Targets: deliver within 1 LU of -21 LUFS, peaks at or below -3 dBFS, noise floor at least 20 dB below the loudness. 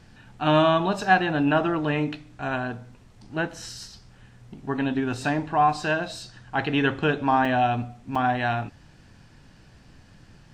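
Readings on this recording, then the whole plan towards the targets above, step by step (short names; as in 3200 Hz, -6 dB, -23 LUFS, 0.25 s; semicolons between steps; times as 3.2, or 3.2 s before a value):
dropouts 2; longest dropout 4.1 ms; loudness -24.5 LUFS; peak -5.5 dBFS; loudness target -21.0 LUFS
-> interpolate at 7.45/8.15, 4.1 ms; gain +3.5 dB; limiter -3 dBFS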